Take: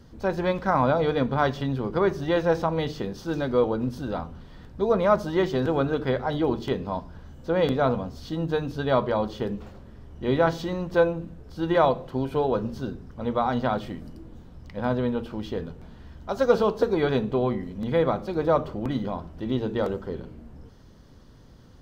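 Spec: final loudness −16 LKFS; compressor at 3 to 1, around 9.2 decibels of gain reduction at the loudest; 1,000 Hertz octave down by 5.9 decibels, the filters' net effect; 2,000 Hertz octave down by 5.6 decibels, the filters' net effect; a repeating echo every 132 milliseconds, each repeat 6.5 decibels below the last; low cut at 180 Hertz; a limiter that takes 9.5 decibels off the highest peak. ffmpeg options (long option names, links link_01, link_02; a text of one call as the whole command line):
ffmpeg -i in.wav -af "highpass=180,equalizer=frequency=1000:width_type=o:gain=-7,equalizer=frequency=2000:width_type=o:gain=-4.5,acompressor=threshold=-29dB:ratio=3,alimiter=level_in=4dB:limit=-24dB:level=0:latency=1,volume=-4dB,aecho=1:1:132|264|396|528|660|792:0.473|0.222|0.105|0.0491|0.0231|0.0109,volume=21dB" out.wav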